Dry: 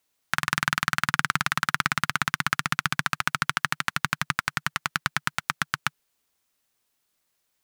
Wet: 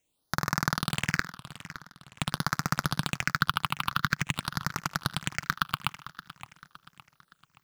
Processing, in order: 1.14–2.19 flipped gate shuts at -8 dBFS, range -39 dB; thinning echo 76 ms, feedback 52%, high-pass 420 Hz, level -18.5 dB; in parallel at -11 dB: sample-rate reducer 3100 Hz, jitter 0%; on the sum: phaser stages 6, 0.47 Hz, lowest notch 460–3000 Hz; warbling echo 0.567 s, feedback 42%, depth 192 cents, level -15 dB

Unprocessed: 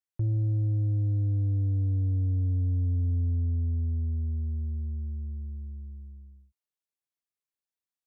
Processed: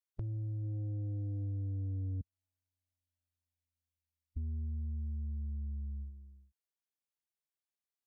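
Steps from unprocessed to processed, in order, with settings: 2.21–4.37 inverse Chebyshev high-pass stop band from 460 Hz, stop band 60 dB; spectral noise reduction 8 dB; compressor, threshold -40 dBFS, peak gain reduction 10.5 dB; gain +3 dB

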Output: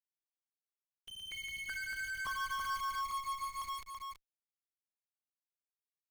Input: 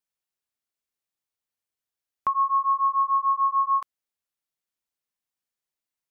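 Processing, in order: per-bin expansion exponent 3; 3.11–3.62 differentiator; limiter -24.5 dBFS, peak gain reduction 7.5 dB; soft clip -37.5 dBFS, distortion -7 dB; bit-crush 10-bit; added harmonics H 8 -10 dB, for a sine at -37 dBFS; echo 0.33 s -5 dB; echoes that change speed 93 ms, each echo +6 st, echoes 3

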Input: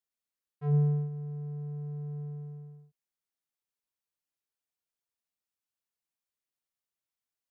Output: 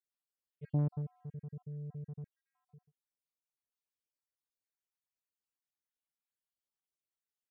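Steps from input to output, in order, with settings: random spectral dropouts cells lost 58%; 2.24–2.68 brick-wall FIR high-pass 750 Hz; Doppler distortion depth 0.8 ms; gain -4.5 dB

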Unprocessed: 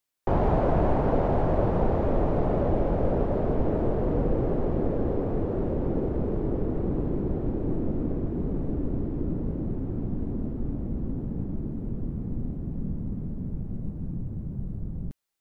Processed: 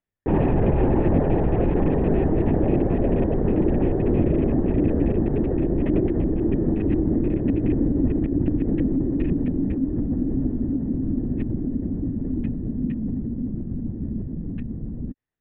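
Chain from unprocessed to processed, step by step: rattling part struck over -23 dBFS, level -25 dBFS; high shelf 2600 Hz -11 dB; small resonant body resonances 260/1800 Hz, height 14 dB, ringing for 25 ms; LPC vocoder at 8 kHz whisper; gain -1.5 dB

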